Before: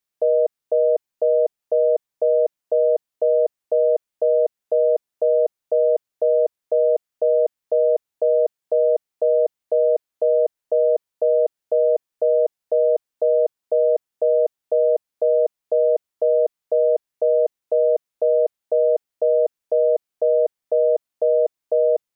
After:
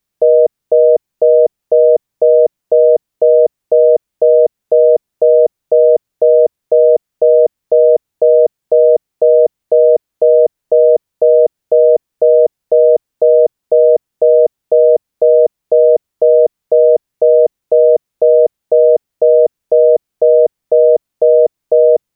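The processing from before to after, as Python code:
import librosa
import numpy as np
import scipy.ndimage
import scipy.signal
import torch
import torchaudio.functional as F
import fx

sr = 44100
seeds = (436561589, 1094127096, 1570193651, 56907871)

y = fx.low_shelf(x, sr, hz=310.0, db=11.5)
y = y * 10.0 ** (6.5 / 20.0)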